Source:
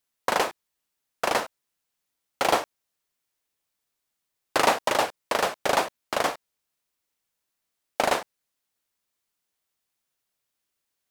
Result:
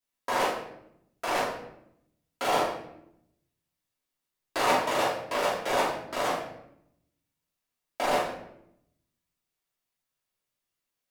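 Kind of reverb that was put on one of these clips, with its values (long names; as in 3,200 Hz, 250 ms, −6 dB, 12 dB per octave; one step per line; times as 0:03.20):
rectangular room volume 190 cubic metres, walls mixed, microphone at 2.9 metres
level −12.5 dB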